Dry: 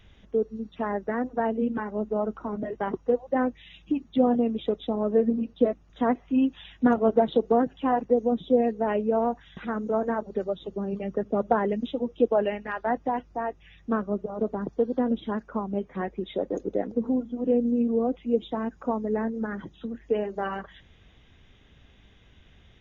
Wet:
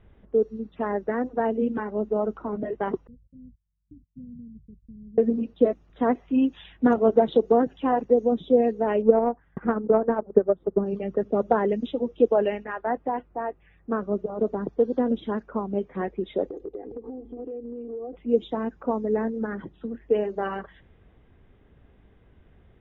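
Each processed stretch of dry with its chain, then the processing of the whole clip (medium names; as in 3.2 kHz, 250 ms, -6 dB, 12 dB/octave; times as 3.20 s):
3.07–5.18 s: gate -43 dBFS, range -22 dB + inverse Chebyshev low-pass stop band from 850 Hz, stop band 80 dB
9.02–10.86 s: low-pass 1.6 kHz 24 dB/octave + transient shaper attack +9 dB, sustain -6 dB
12.64–14.02 s: low-pass 2.2 kHz + bass shelf 390 Hz -4 dB
16.46–18.13 s: peaking EQ 1.4 kHz -12 dB 0.53 oct + comb 2.5 ms, depth 79% + compression 20:1, threshold -34 dBFS
whole clip: level-controlled noise filter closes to 1.3 kHz, open at -20.5 dBFS; peaking EQ 410 Hz +4 dB 0.82 oct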